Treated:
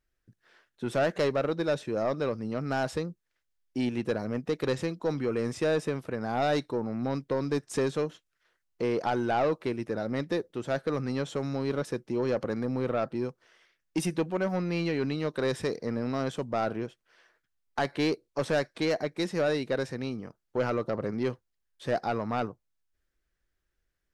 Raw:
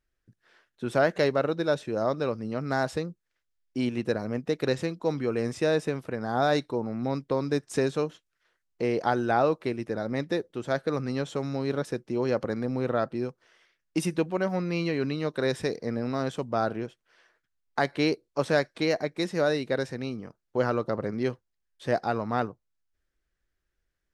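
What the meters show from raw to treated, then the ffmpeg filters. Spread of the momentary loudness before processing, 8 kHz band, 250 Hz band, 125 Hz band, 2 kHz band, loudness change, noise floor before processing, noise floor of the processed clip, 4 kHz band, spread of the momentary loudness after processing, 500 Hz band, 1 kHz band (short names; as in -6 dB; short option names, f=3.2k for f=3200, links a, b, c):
7 LU, -0.5 dB, -1.5 dB, -1.5 dB, -3.0 dB, -2.0 dB, -80 dBFS, -80 dBFS, -2.0 dB, 6 LU, -2.0 dB, -2.5 dB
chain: -af "asoftclip=type=tanh:threshold=-19.5dB"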